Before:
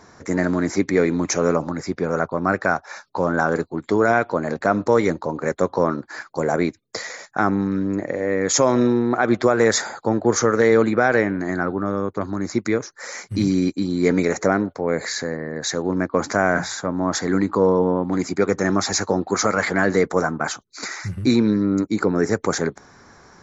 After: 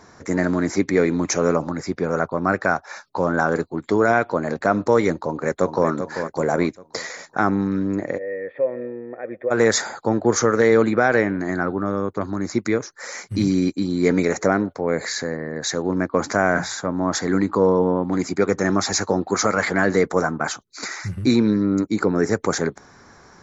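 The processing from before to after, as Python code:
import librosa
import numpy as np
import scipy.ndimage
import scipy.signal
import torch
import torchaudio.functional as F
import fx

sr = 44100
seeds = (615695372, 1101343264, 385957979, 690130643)

y = fx.echo_throw(x, sr, start_s=5.19, length_s=0.69, ms=390, feedback_pct=40, wet_db=-8.0)
y = fx.formant_cascade(y, sr, vowel='e', at=(8.17, 9.5), fade=0.02)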